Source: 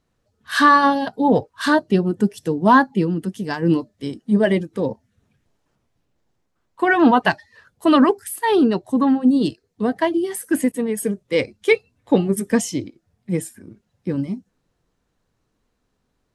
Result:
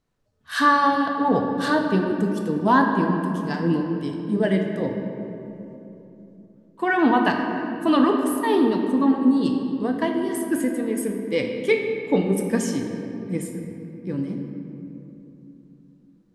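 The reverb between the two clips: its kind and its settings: simulated room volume 140 m³, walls hard, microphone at 0.32 m; trim -5.5 dB

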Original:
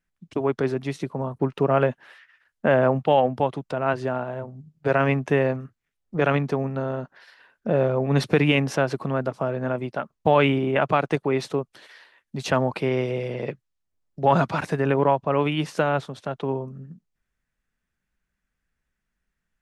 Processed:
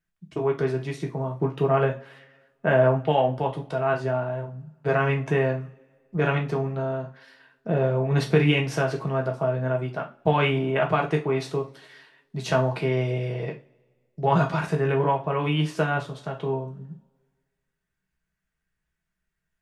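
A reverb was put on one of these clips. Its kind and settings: two-slope reverb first 0.28 s, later 1.7 s, from -28 dB, DRR 0 dB; trim -4.5 dB

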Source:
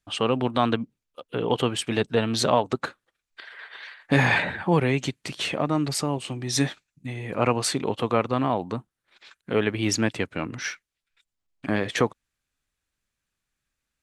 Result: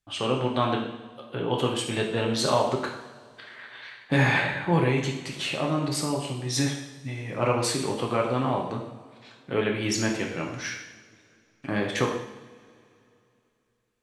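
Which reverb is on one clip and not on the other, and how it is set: two-slope reverb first 0.81 s, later 3 s, from -20 dB, DRR -0.5 dB; trim -4.5 dB

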